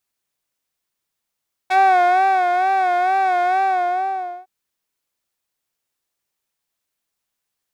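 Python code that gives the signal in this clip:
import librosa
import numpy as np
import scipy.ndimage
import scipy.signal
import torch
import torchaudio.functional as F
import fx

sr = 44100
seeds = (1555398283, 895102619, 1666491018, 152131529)

y = fx.sub_patch_vibrato(sr, seeds[0], note=78, wave='triangle', wave2='triangle', interval_st=12, detune_cents=16, level2_db=-16, sub_db=-13.5, noise_db=-24.5, kind='bandpass', cutoff_hz=740.0, q=1.0, env_oct=2.0, env_decay_s=0.07, env_sustain_pct=40, attack_ms=14.0, decay_s=0.75, sustain_db=-5.0, release_s=0.89, note_s=1.87, lfo_hz=2.2, vibrato_cents=78)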